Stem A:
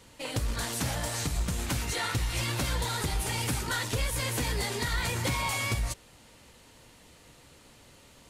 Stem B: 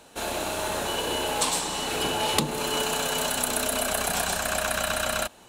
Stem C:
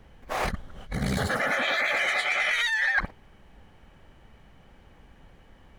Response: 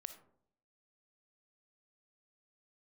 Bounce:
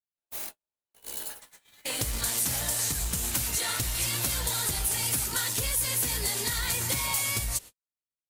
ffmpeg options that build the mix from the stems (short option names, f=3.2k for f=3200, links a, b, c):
-filter_complex "[0:a]adelay=1650,volume=1dB[a];[1:a]aemphasis=mode=reproduction:type=50kf,flanger=delay=9.8:depth=9.3:regen=37:speed=0.56:shape=sinusoidal,aeval=exprs='0.15*(cos(1*acos(clip(val(0)/0.15,-1,1)))-cos(1*PI/2))+0.00944*(cos(6*acos(clip(val(0)/0.15,-1,1)))-cos(6*PI/2))':c=same,volume=-9dB[b];[2:a]aderivative,aeval=exprs='val(0)+0.002*(sin(2*PI*60*n/s)+sin(2*PI*2*60*n/s)/2+sin(2*PI*3*60*n/s)/3+sin(2*PI*4*60*n/s)/4+sin(2*PI*5*60*n/s)/5)':c=same,acrusher=bits=8:mix=0:aa=0.000001,volume=-3dB[c];[b][c]amix=inputs=2:normalize=0,acompressor=threshold=-44dB:ratio=3,volume=0dB[d];[a][d]amix=inputs=2:normalize=0,aemphasis=mode=production:type=75fm,agate=range=-56dB:threshold=-36dB:ratio=16:detection=peak,acompressor=threshold=-29dB:ratio=2"